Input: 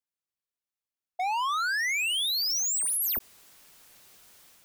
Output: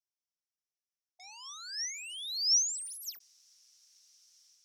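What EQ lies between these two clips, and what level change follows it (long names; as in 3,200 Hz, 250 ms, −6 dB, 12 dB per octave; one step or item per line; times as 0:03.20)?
resonant band-pass 5,600 Hz, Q 7
+5.0 dB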